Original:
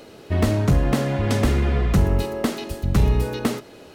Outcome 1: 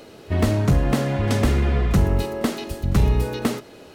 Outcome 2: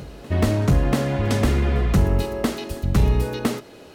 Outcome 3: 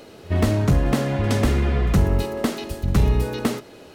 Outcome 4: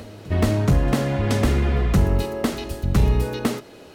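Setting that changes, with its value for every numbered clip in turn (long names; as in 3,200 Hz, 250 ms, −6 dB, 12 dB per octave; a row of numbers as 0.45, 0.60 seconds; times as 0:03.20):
backwards echo, delay time: 30, 686, 68, 427 milliseconds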